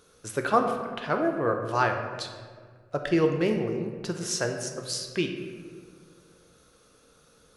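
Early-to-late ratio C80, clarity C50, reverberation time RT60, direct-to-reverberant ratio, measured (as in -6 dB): 7.0 dB, 5.5 dB, 1.7 s, 3.5 dB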